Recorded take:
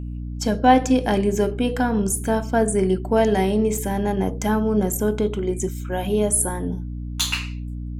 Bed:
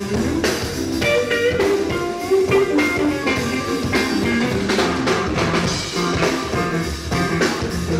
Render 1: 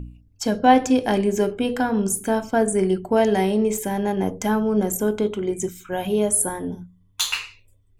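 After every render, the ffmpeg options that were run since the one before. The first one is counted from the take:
-af "bandreject=f=60:t=h:w=4,bandreject=f=120:t=h:w=4,bandreject=f=180:t=h:w=4,bandreject=f=240:t=h:w=4,bandreject=f=300:t=h:w=4"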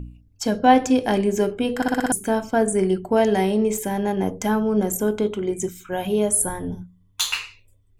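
-filter_complex "[0:a]asplit=3[s0][s1][s2];[s0]afade=t=out:st=6.41:d=0.02[s3];[s1]asubboost=boost=3:cutoff=140,afade=t=in:st=6.41:d=0.02,afade=t=out:st=6.81:d=0.02[s4];[s2]afade=t=in:st=6.81:d=0.02[s5];[s3][s4][s5]amix=inputs=3:normalize=0,asplit=7[s6][s7][s8][s9][s10][s11][s12];[s6]atrim=end=1.822[s13];[s7]atrim=start=1.758:end=1.822[s14];[s8]atrim=start=1.758:end=1.822[s15];[s9]atrim=start=1.758:end=1.822[s16];[s10]atrim=start=1.758:end=1.822[s17];[s11]atrim=start=1.758:end=1.822[s18];[s12]atrim=start=2.118[s19];[s13][s14]acrossfade=d=0.004:c1=hsin:c2=hsin[s20];[s20][s15]acrossfade=d=0.004:c1=hsin:c2=hsin[s21];[s21][s16]acrossfade=d=0.004:c1=hsin:c2=hsin[s22];[s22][s17]acrossfade=d=0.004:c1=hsin:c2=hsin[s23];[s23][s18]acrossfade=d=0.004:c1=hsin:c2=hsin[s24];[s24][s19]acrossfade=d=0.004:c1=hsin:c2=hsin"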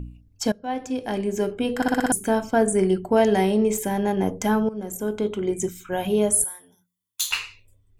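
-filter_complex "[0:a]asettb=1/sr,asplit=3[s0][s1][s2];[s0]atrim=end=6.444[s3];[s1]atrim=start=6.44:end=7.31,asetpts=PTS-STARTPTS,afade=t=in:d=0.004:c=qsin,afade=t=out:st=0.866:d=0.004:c=qsin,aderivative[s4];[s2]atrim=start=7.306[s5];[s3][s4]acrossfade=d=0.004:c1=hsin:c2=qsin[s6];[s6][s5]acrossfade=d=0.004:c1=qsin:c2=hsin,asplit=3[s7][s8][s9];[s7]atrim=end=0.52,asetpts=PTS-STARTPTS,afade=t=out:st=0.516:d=0.004:c=hsin:silence=0.0630957[s10];[s8]atrim=start=0.52:end=4.69,asetpts=PTS-STARTPTS,afade=t=in:d=1.38:silence=0.0630957,afade=t=out:st=4.166:d=0.004:c=hsin:silence=0.149624[s11];[s9]atrim=start=4.69,asetpts=PTS-STARTPTS,afade=t=in:d=0.78:silence=0.149624[s12];[s10][s11][s12]concat=n=3:v=0:a=1"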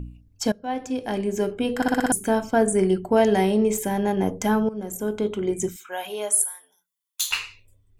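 -filter_complex "[0:a]asettb=1/sr,asplit=3[s0][s1][s2];[s0]atrim=end=5.764[s3];[s1]atrim=start=5.76:end=7.29,asetpts=PTS-STARTPTS,afade=t=in:d=0.004:c=qsin,afade=t=out:st=1.526:d=0.004:c=qsin,highpass=720[s4];[s2]atrim=start=7.286[s5];[s3][s4]acrossfade=d=0.004:c1=hsin:c2=qsin[s6];[s6][s5]acrossfade=d=0.004:c1=qsin:c2=hsin"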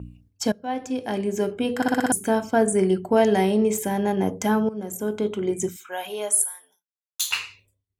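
-af "highpass=75,agate=range=0.0224:threshold=0.00224:ratio=3:detection=peak"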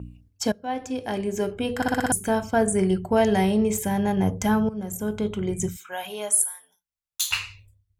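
-af "asubboost=boost=10.5:cutoff=98"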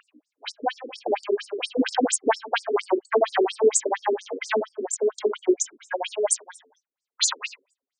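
-af "aeval=exprs='0.398*sin(PI/2*2.82*val(0)/0.398)':c=same,afftfilt=real='re*between(b*sr/1024,320*pow(6700/320,0.5+0.5*sin(2*PI*4.3*pts/sr))/1.41,320*pow(6700/320,0.5+0.5*sin(2*PI*4.3*pts/sr))*1.41)':imag='im*between(b*sr/1024,320*pow(6700/320,0.5+0.5*sin(2*PI*4.3*pts/sr))/1.41,320*pow(6700/320,0.5+0.5*sin(2*PI*4.3*pts/sr))*1.41)':win_size=1024:overlap=0.75"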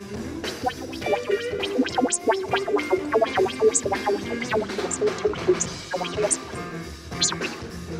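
-filter_complex "[1:a]volume=0.237[s0];[0:a][s0]amix=inputs=2:normalize=0"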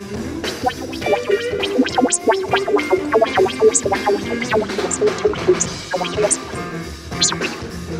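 -af "volume=2.11,alimiter=limit=0.708:level=0:latency=1"

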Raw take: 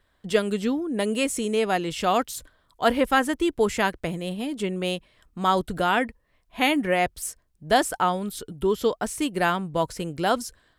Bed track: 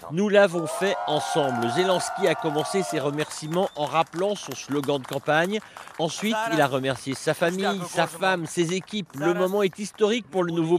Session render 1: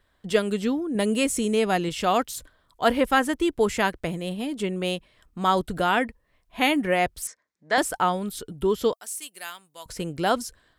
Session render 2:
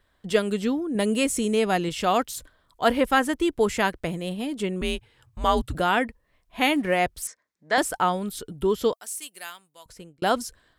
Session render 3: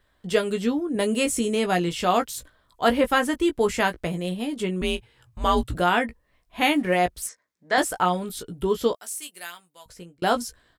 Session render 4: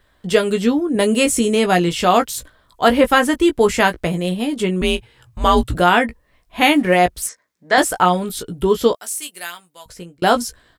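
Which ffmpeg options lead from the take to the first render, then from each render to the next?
-filter_complex "[0:a]asettb=1/sr,asplit=3[s0][s1][s2];[s0]atrim=end=0.954[s3];[s1]atrim=start=0.95:end=1.89,asetpts=PTS-STARTPTS,afade=t=in:d=0.004:c=qsin,afade=t=out:st=0.936:d=0.004:c=qsin,bass=f=250:g=5,treble=f=4000:g=2[s4];[s2]atrim=start=1.886[s5];[s3][s4]acrossfade=d=0.004:c1=hsin:c2=qsin[s6];[s6][s5]acrossfade=d=0.004:c1=qsin:c2=hsin,asettb=1/sr,asplit=3[s7][s8][s9];[s7]atrim=end=7.274[s10];[s8]atrim=start=7.27:end=7.78,asetpts=PTS-STARTPTS,afade=t=in:d=0.004:c=qsin,afade=t=out:st=0.506:d=0.004:c=qsin,highpass=380,equalizer=f=380:t=q:w=4:g=-7,equalizer=f=700:t=q:w=4:g=-5,equalizer=f=2000:t=q:w=4:g=8,equalizer=f=2900:t=q:w=4:g=-9,equalizer=f=4700:t=q:w=4:g=-3,lowpass=f=6600:w=0.5412,lowpass=f=6600:w=1.3066[s11];[s9]atrim=start=7.776[s12];[s10][s11]acrossfade=d=0.004:c1=hsin:c2=qsin[s13];[s13][s12]acrossfade=d=0.004:c1=qsin:c2=hsin,asettb=1/sr,asplit=3[s14][s15][s16];[s14]atrim=end=8.934[s17];[s15]atrim=start=8.93:end=9.86,asetpts=PTS-STARTPTS,afade=t=in:d=0.004:c=qsin,afade=t=out:st=0.926:d=0.004:c=qsin,aderivative[s18];[s16]atrim=start=9.856[s19];[s17][s18]acrossfade=d=0.004:c1=hsin:c2=qsin[s20];[s20][s19]acrossfade=d=0.004:c1=qsin:c2=hsin"
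-filter_complex "[0:a]asettb=1/sr,asplit=3[s0][s1][s2];[s0]atrim=end=4.814[s3];[s1]atrim=start=4.81:end=5.75,asetpts=PTS-STARTPTS,afade=t=in:d=0.004:c=qsin,afade=t=out:st=0.936:d=0.004:c=qsin,afreqshift=-140[s4];[s2]atrim=start=5.746[s5];[s3][s4]acrossfade=d=0.004:c1=hsin:c2=qsin[s6];[s6][s5]acrossfade=d=0.004:c1=qsin:c2=hsin,asettb=1/sr,asplit=3[s7][s8][s9];[s7]atrim=end=6.604[s10];[s8]atrim=start=6.6:end=7,asetpts=PTS-STARTPTS,afade=t=in:d=0.004:c=qsin,afade=t=out:st=0.396:d=0.004:c=qsin,aeval=exprs='sgn(val(0))*max(abs(val(0))-0.00299,0)':c=same[s11];[s9]atrim=start=6.996[s12];[s10][s11]acrossfade=d=0.004:c1=hsin:c2=qsin[s13];[s13][s12]acrossfade=d=0.004:c1=qsin:c2=hsin,asplit=2[s14][s15];[s14]atrim=end=10.22,asetpts=PTS-STARTPTS,afade=t=out:st=9.34:d=0.88[s16];[s15]atrim=start=10.22,asetpts=PTS-STARTPTS,afade=t=in:d=0.004:c=hsin[s17];[s16][s17]concat=n=2:v=0:a=1"
-filter_complex "[0:a]asplit=2[s0][s1];[s1]adelay=17,volume=0.447[s2];[s0][s2]amix=inputs=2:normalize=0"
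-af "volume=2.37,alimiter=limit=0.891:level=0:latency=1"

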